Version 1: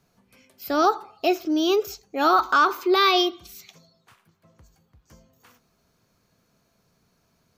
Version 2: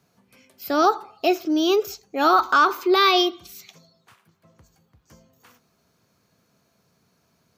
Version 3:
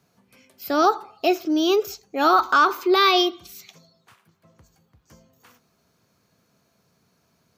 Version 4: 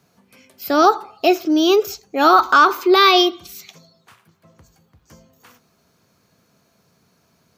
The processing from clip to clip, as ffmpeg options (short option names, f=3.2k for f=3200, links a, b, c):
-af "highpass=82,volume=1.5dB"
-af anull
-af "bandreject=f=60:t=h:w=6,bandreject=f=120:t=h:w=6,volume=5dB"